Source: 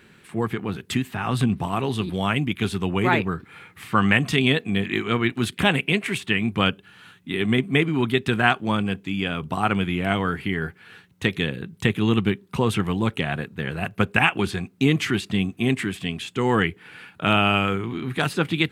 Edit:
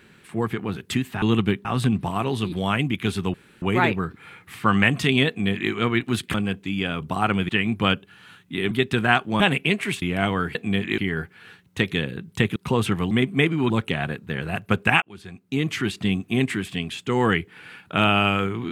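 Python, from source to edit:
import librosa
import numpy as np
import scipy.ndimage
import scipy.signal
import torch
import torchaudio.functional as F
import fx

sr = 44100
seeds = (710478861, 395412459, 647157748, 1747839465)

y = fx.edit(x, sr, fx.insert_room_tone(at_s=2.91, length_s=0.28),
    fx.duplicate(start_s=4.57, length_s=0.43, to_s=10.43),
    fx.swap(start_s=5.63, length_s=0.62, other_s=8.75, other_length_s=1.15),
    fx.move(start_s=7.47, length_s=0.59, to_s=12.99),
    fx.move(start_s=12.01, length_s=0.43, to_s=1.22),
    fx.fade_in_span(start_s=14.31, length_s=1.01), tone=tone)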